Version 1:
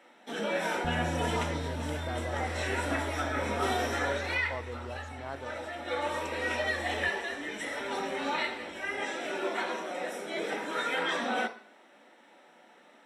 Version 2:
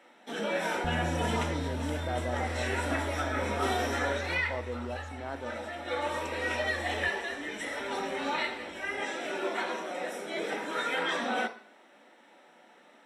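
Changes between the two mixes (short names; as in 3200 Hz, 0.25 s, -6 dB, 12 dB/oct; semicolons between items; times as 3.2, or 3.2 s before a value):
speech: send on; second sound: remove rippled Chebyshev low-pass 580 Hz, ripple 3 dB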